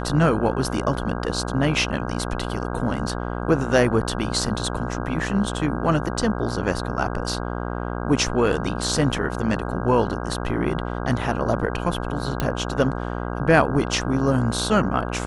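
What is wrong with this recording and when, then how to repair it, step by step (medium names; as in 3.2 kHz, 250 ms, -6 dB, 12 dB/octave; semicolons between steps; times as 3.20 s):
buzz 60 Hz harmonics 27 -28 dBFS
12.40 s: pop -9 dBFS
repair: de-click; de-hum 60 Hz, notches 27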